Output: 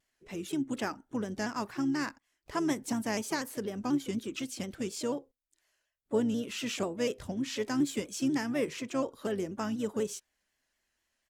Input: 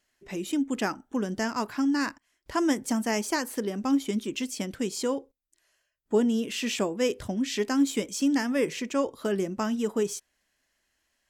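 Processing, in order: harmoniser -12 st -17 dB, +4 st -16 dB; shaped vibrato saw down 4.1 Hz, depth 100 cents; gain -5.5 dB

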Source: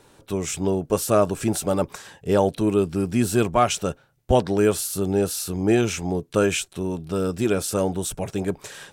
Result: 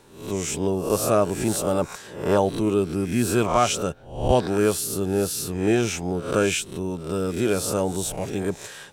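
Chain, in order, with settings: spectral swells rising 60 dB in 0.54 s; gain -2 dB

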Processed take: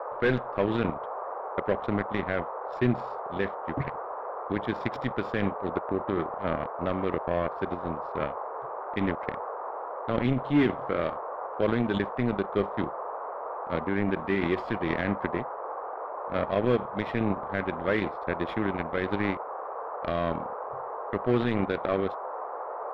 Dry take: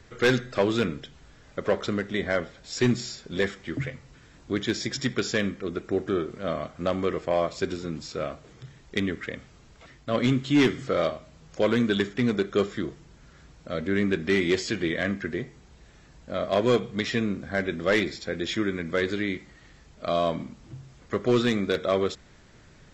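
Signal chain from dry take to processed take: power-law curve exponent 2; band noise 440–1200 Hz -45 dBFS; in parallel at +1 dB: negative-ratio compressor -35 dBFS, ratio -0.5; on the sum: air absorption 480 m; gain +1.5 dB

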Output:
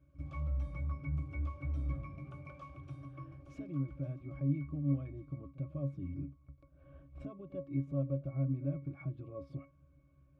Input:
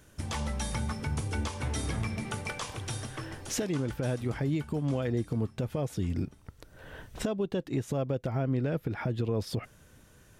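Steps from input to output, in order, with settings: octave resonator C#, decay 0.19 s; pre-echo 46 ms -18 dB; gain +1 dB

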